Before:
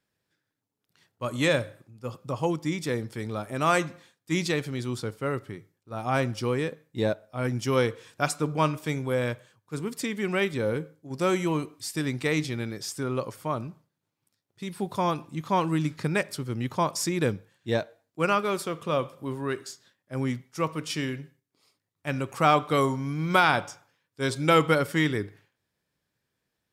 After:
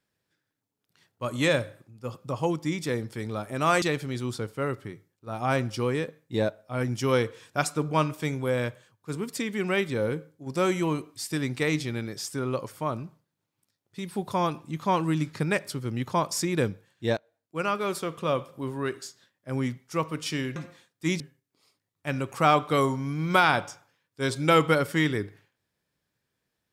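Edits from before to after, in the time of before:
0:03.82–0:04.46: move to 0:21.20
0:17.81–0:18.63: fade in linear, from −19 dB

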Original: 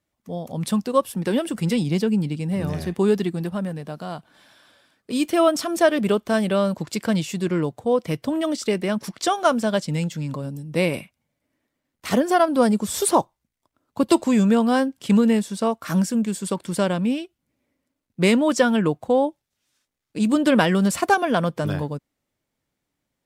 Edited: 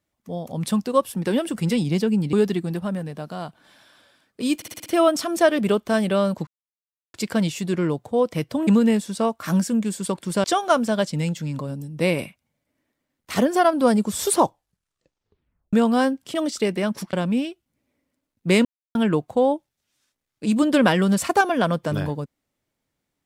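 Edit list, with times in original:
0:02.33–0:03.03: remove
0:05.26: stutter 0.06 s, 6 plays
0:06.87: splice in silence 0.67 s
0:08.40–0:09.19: swap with 0:15.09–0:16.86
0:13.18: tape stop 1.30 s
0:18.38–0:18.68: silence

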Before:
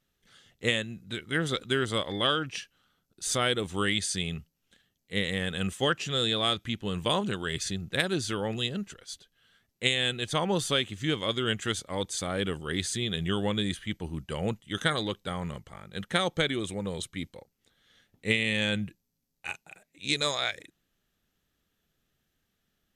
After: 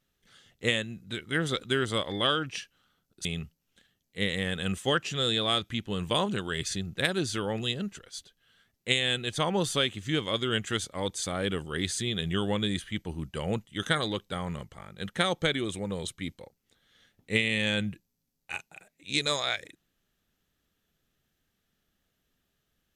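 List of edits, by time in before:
0:03.25–0:04.20: remove

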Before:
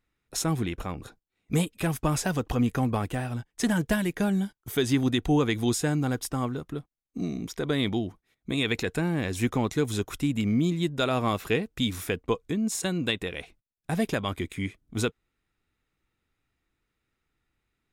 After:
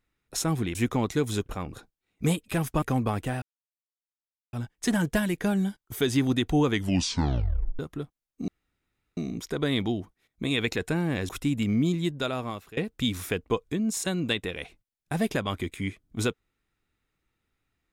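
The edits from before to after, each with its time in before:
0:02.11–0:02.69: remove
0:03.29: splice in silence 1.11 s
0:05.47: tape stop 1.08 s
0:07.24: splice in room tone 0.69 s
0:09.36–0:10.07: move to 0:00.75
0:10.76–0:11.55: fade out, to −22 dB

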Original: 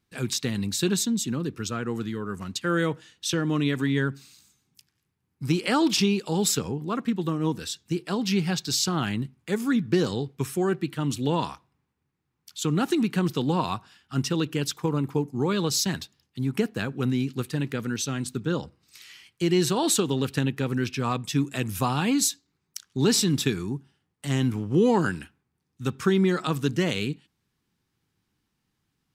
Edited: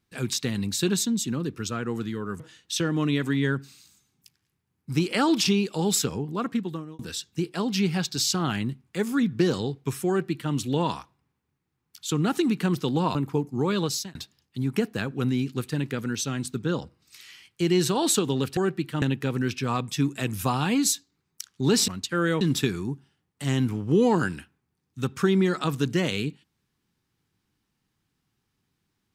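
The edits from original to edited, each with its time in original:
0:02.40–0:02.93: move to 0:23.24
0:07.04–0:07.52: fade out
0:10.61–0:11.06: duplicate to 0:20.38
0:13.68–0:14.96: remove
0:15.64–0:15.96: fade out

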